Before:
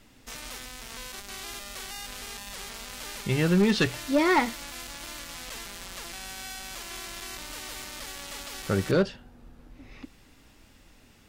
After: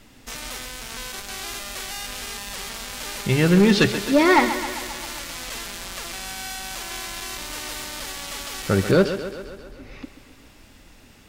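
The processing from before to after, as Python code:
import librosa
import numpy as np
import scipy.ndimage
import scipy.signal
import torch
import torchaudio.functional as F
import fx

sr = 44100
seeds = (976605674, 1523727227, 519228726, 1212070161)

y = fx.echo_thinned(x, sr, ms=133, feedback_pct=65, hz=150.0, wet_db=-10.5)
y = y * 10.0 ** (6.0 / 20.0)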